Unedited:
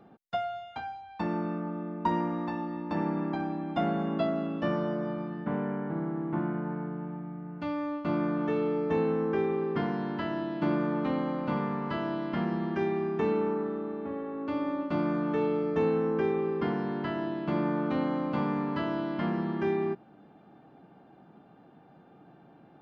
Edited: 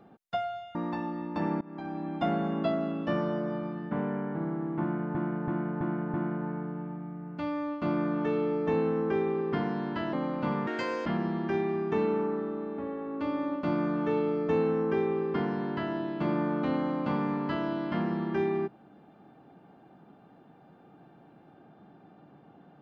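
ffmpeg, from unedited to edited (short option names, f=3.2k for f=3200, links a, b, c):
-filter_complex "[0:a]asplit=10[a][b][c][d][e][f][g][h][i][j];[a]atrim=end=0.752[k];[b]atrim=start=2.298:end=3.16,asetpts=PTS-STARTPTS,afade=t=out:st=0.858:d=0.004:c=hsin:silence=0.0630957[l];[c]atrim=start=3.16:end=6.702,asetpts=PTS-STARTPTS,afade=t=in:d=0.48:silence=0.0630957[m];[d]atrim=start=6.368:end=6.702[n];[e]atrim=start=6.368:end=6.702[o];[f]atrim=start=6.368:end=6.702[p];[g]atrim=start=6.368:end=10.362[q];[h]atrim=start=11.178:end=11.724[r];[i]atrim=start=11.72:end=12.33,asetpts=PTS-STARTPTS,asetrate=69237,aresample=44100,atrim=end_sample=17134,asetpts=PTS-STARTPTS[s];[j]atrim=start=12.326[t];[l][m]concat=n=2:v=0:a=1[u];[k][u]acrossfade=d=0.004:c1=hsin:c2=hsin[v];[v][n]acrossfade=d=0.004:c1=hsin:c2=hsin[w];[w][o]acrossfade=d=0.004:c1=hsin:c2=hsin[x];[x][p]acrossfade=d=0.004:c1=hsin:c2=hsin[y];[y][q]acrossfade=d=0.004:c1=hsin:c2=hsin[z];[z][r]acrossfade=d=0.004:c1=hsin:c2=hsin[aa];[aa][s]acrossfade=d=0.004:c1=hsin:c2=hsin[ab];[ab][t]acrossfade=d=0.004:c1=hsin:c2=hsin"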